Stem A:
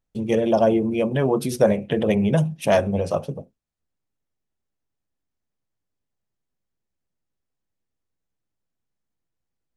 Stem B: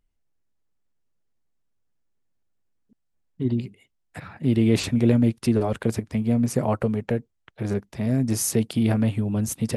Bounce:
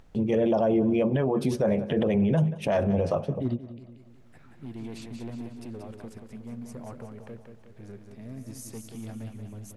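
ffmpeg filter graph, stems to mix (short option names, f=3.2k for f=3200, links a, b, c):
-filter_complex "[0:a]acompressor=mode=upward:threshold=-36dB:ratio=2.5,aemphasis=mode=reproduction:type=75kf,volume=1dB,asplit=3[a][b][c];[b]volume=-22.5dB[d];[1:a]volume=14.5dB,asoftclip=hard,volume=-14.5dB,volume=-4.5dB,asplit=2[e][f];[f]volume=-14dB[g];[c]apad=whole_len=430781[h];[e][h]sidechaingate=range=-33dB:threshold=-50dB:ratio=16:detection=peak[i];[d][g]amix=inputs=2:normalize=0,aecho=0:1:182|364|546|728|910|1092|1274:1|0.49|0.24|0.118|0.0576|0.0282|0.0138[j];[a][i][j]amix=inputs=3:normalize=0,alimiter=limit=-16dB:level=0:latency=1:release=37"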